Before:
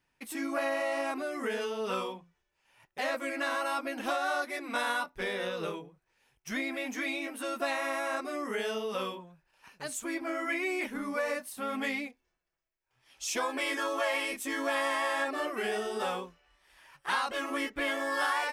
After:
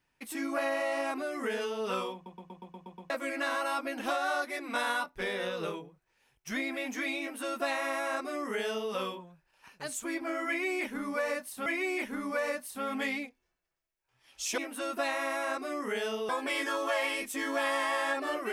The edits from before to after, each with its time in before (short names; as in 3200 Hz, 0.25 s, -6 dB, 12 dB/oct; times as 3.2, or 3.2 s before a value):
2.14 stutter in place 0.12 s, 8 plays
7.21–8.92 copy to 13.4
10.48–11.66 loop, 2 plays